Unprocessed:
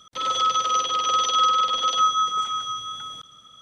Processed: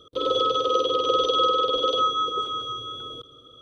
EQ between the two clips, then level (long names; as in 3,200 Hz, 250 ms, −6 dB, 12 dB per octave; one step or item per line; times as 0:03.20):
drawn EQ curve 120 Hz 0 dB, 190 Hz −12 dB, 290 Hz +6 dB, 470 Hz +12 dB, 810 Hz −16 dB, 1,200 Hz −8 dB, 1,900 Hz −26 dB, 3,500 Hz −6 dB, 6,200 Hz −23 dB, 11,000 Hz −14 dB
+7.0 dB